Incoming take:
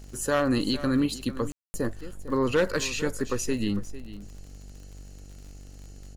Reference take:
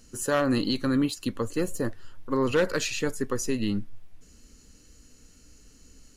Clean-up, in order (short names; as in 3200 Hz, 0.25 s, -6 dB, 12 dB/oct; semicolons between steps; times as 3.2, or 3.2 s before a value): de-click; de-hum 48.3 Hz, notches 17; room tone fill 1.52–1.74; inverse comb 0.451 s -15.5 dB